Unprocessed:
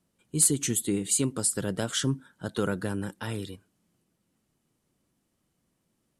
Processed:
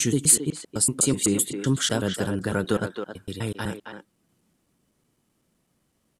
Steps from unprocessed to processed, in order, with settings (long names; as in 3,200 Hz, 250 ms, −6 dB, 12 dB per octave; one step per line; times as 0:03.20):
slices reordered back to front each 126 ms, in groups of 6
far-end echo of a speakerphone 270 ms, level −6 dB
level +4.5 dB